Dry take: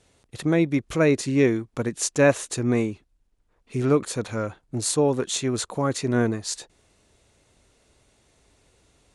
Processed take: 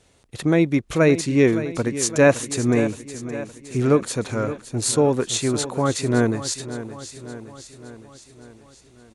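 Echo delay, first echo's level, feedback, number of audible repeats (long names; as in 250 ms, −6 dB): 566 ms, −13.0 dB, 58%, 5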